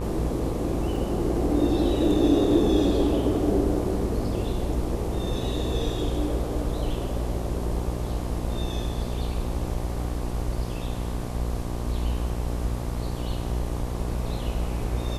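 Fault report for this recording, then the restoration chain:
buzz 60 Hz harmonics 20 -30 dBFS
0.96 s: dropout 2.4 ms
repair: de-hum 60 Hz, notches 20; interpolate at 0.96 s, 2.4 ms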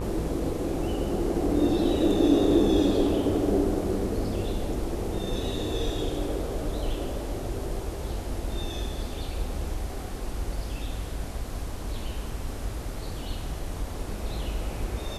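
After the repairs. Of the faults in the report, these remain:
nothing left

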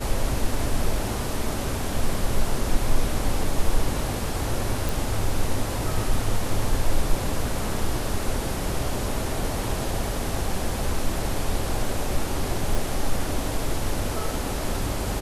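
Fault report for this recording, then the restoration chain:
4.89 s: pop
12.75 s: pop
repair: de-click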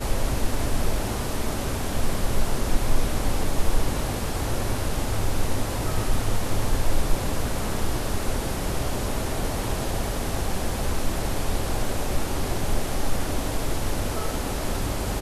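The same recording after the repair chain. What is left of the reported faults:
12.75 s: pop

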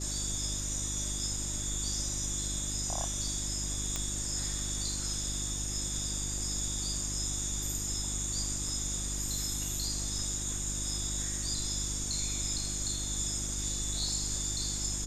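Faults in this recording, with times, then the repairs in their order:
hum 50 Hz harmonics 7 -39 dBFS
3.96 s: pop -18 dBFS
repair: de-click; de-hum 50 Hz, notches 7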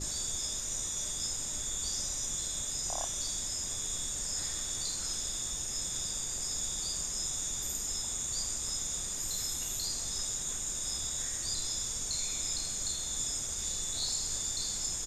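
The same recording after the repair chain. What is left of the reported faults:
nothing left

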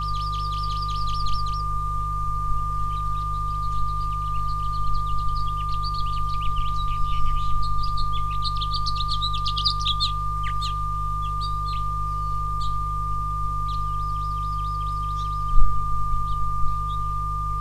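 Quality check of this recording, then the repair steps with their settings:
hum 50 Hz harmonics 3 -29 dBFS
whine 1.2 kHz -26 dBFS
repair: de-hum 50 Hz, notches 3; band-stop 1.2 kHz, Q 30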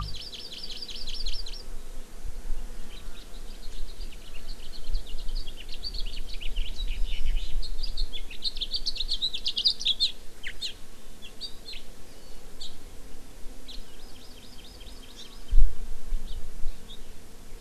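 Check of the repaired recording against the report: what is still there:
nothing left

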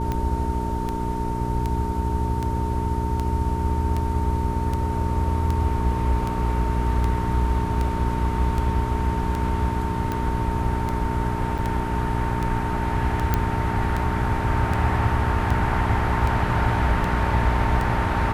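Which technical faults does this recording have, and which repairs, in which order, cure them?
hum 60 Hz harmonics 7 -27 dBFS
tick 78 rpm -14 dBFS
whine 910 Hz -29 dBFS
11.58–11.59 s: dropout 6.7 ms
13.34 s: pop -7 dBFS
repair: de-click; band-stop 910 Hz, Q 30; de-hum 60 Hz, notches 7; interpolate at 11.58 s, 6.7 ms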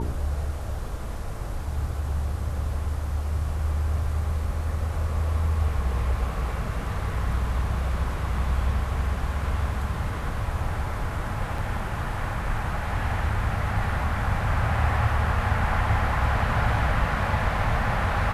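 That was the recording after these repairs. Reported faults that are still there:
nothing left

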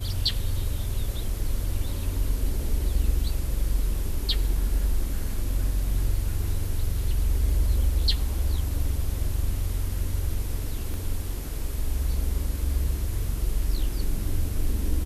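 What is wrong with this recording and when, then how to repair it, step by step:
10.94 s: pop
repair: de-click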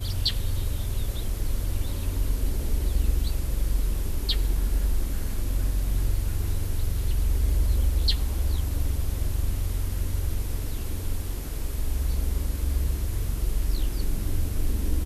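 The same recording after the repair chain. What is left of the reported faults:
10.94 s: pop

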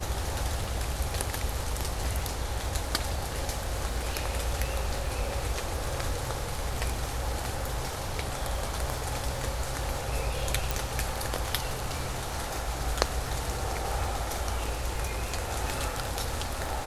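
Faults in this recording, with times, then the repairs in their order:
crackle 59 per s -37 dBFS
10.71 s: pop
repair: de-click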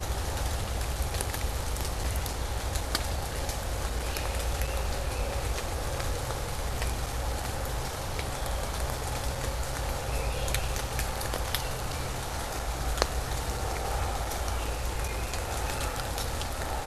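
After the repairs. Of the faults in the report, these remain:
10.71 s: pop

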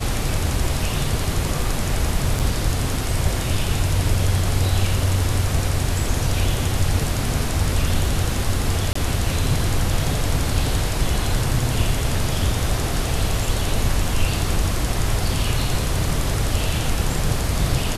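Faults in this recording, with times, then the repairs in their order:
2.39–2.40 s: dropout 6.2 ms
8.93–8.95 s: dropout 24 ms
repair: interpolate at 2.39 s, 6.2 ms; interpolate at 8.93 s, 24 ms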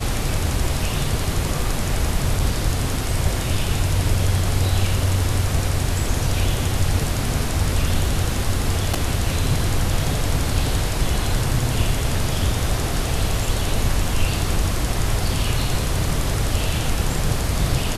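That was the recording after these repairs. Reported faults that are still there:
nothing left

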